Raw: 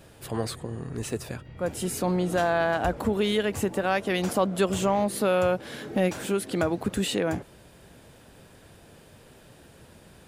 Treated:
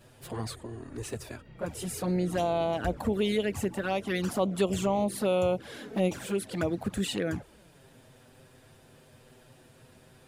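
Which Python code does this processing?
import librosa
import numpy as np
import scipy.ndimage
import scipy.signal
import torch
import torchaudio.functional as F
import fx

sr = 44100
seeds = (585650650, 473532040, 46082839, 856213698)

y = fx.env_flanger(x, sr, rest_ms=9.0, full_db=-20.0)
y = F.gain(torch.from_numpy(y), -1.5).numpy()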